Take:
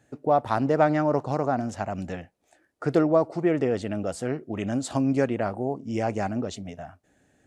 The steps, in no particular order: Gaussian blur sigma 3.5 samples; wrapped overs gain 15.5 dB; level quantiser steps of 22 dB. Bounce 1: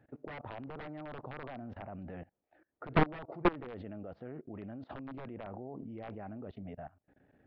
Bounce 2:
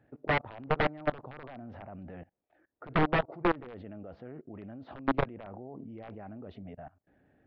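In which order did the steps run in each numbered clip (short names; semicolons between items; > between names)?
wrapped overs > Gaussian blur > level quantiser; wrapped overs > level quantiser > Gaussian blur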